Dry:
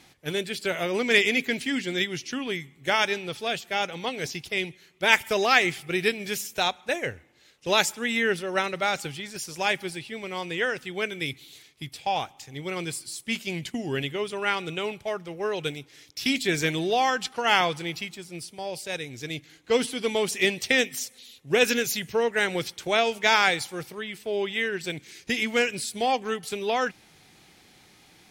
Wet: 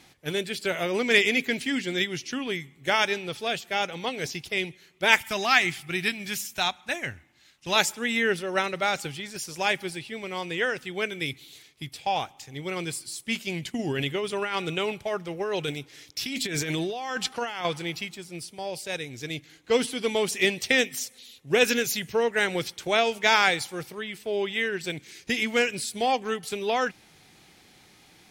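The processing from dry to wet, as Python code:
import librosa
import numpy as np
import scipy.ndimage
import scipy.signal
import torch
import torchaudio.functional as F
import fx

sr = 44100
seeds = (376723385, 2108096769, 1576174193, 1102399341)

y = fx.peak_eq(x, sr, hz=470.0, db=-15.0, octaves=0.54, at=(5.2, 7.76))
y = fx.over_compress(y, sr, threshold_db=-29.0, ratio=-1.0, at=(13.79, 17.65))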